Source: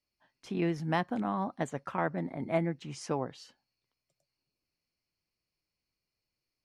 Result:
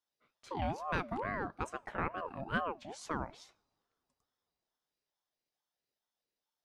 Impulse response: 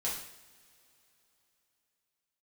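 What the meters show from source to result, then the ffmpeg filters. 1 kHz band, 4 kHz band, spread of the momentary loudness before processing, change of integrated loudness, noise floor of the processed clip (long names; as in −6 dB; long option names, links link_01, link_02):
−2.0 dB, −3.5 dB, 8 LU, −5.0 dB, below −85 dBFS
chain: -filter_complex "[0:a]bandreject=frequency=59.03:width_type=h:width=4,bandreject=frequency=118.06:width_type=h:width=4,bandreject=frequency=177.09:width_type=h:width=4,asplit=2[link_01][link_02];[1:a]atrim=start_sample=2205,asetrate=41013,aresample=44100[link_03];[link_02][link_03]afir=irnorm=-1:irlink=0,volume=-26.5dB[link_04];[link_01][link_04]amix=inputs=2:normalize=0,aeval=exprs='val(0)*sin(2*PI*660*n/s+660*0.4/2.3*sin(2*PI*2.3*n/s))':channel_layout=same,volume=-2.5dB"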